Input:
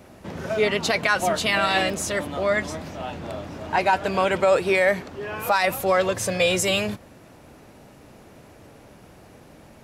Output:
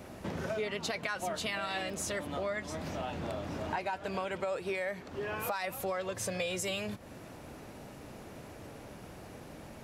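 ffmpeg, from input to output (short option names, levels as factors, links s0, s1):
-af "acompressor=threshold=0.02:ratio=5"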